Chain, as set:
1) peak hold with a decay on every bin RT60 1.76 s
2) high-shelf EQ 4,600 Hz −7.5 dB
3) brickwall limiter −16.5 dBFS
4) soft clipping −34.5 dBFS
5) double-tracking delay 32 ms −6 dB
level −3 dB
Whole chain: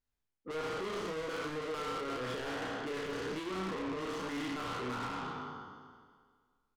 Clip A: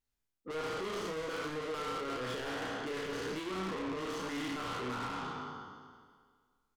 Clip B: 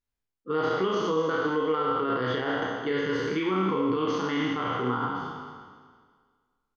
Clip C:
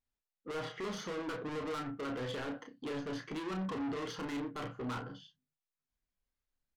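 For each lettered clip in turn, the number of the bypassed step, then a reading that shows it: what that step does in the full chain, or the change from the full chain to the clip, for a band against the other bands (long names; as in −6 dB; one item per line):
2, 8 kHz band +2.0 dB
4, distortion level −5 dB
1, 125 Hz band +4.5 dB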